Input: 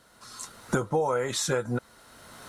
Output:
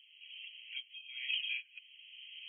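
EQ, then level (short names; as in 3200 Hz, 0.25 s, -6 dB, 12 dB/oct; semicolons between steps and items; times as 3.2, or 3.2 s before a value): steep high-pass 2500 Hz 72 dB/oct; brick-wall FIR low-pass 3300 Hz; +13.5 dB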